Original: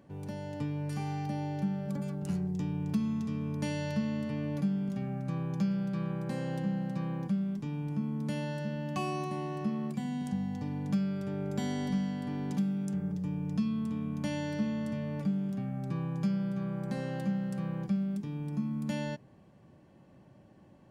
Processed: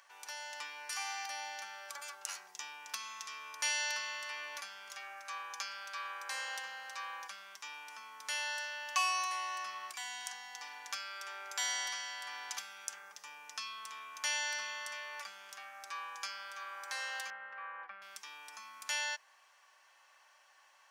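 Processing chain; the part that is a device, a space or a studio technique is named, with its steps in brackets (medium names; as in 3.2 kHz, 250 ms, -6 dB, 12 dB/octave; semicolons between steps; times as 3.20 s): 17.30–18.02 s: low-pass 2.1 kHz 24 dB/octave; headphones lying on a table (high-pass 1.1 kHz 24 dB/octave; peaking EQ 5.9 kHz +7 dB 0.42 oct); trim +9 dB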